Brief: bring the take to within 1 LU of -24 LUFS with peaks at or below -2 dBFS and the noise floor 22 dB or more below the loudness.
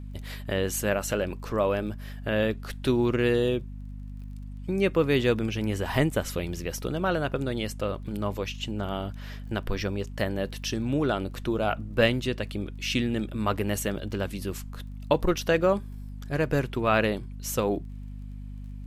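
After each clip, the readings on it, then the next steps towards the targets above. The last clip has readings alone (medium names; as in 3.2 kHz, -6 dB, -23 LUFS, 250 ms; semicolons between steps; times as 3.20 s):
tick rate 25 per s; hum 50 Hz; highest harmonic 250 Hz; hum level -35 dBFS; loudness -28.0 LUFS; peak level -7.0 dBFS; loudness target -24.0 LUFS
-> de-click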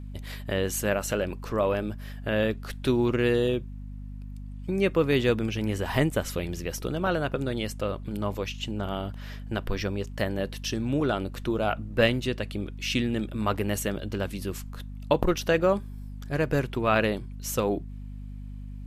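tick rate 0.11 per s; hum 50 Hz; highest harmonic 250 Hz; hum level -36 dBFS
-> de-hum 50 Hz, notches 5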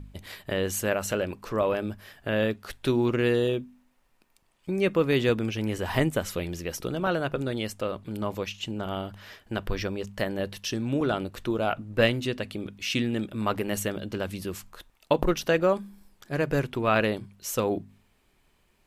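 hum not found; loudness -28.5 LUFS; peak level -7.0 dBFS; loudness target -24.0 LUFS
-> trim +4.5 dB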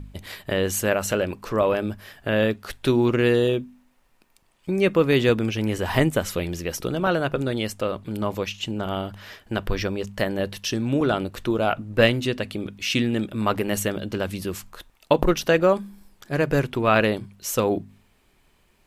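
loudness -24.0 LUFS; peak level -2.5 dBFS; noise floor -62 dBFS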